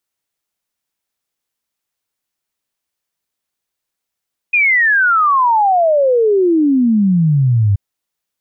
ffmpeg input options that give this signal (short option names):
-f lavfi -i "aevalsrc='0.355*clip(min(t,3.23-t)/0.01,0,1)*sin(2*PI*2500*3.23/log(96/2500)*(exp(log(96/2500)*t/3.23)-1))':d=3.23:s=44100"